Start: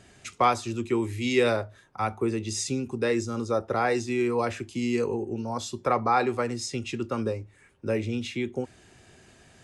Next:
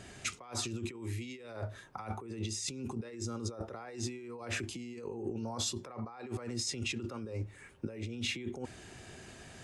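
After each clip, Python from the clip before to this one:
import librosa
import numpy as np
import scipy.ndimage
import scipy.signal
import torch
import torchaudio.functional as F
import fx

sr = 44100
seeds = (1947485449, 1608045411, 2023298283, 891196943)

y = fx.over_compress(x, sr, threshold_db=-37.0, ratio=-1.0)
y = y * librosa.db_to_amplitude(-4.0)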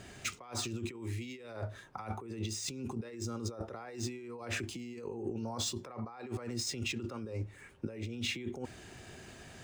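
y = scipy.signal.medfilt(x, 3)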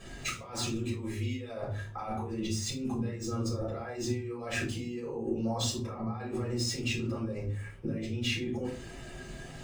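y = fx.spec_quant(x, sr, step_db=15)
y = fx.room_shoebox(y, sr, seeds[0], volume_m3=180.0, walls='furnished', distance_m=5.8)
y = y * librosa.db_to_amplitude(-6.0)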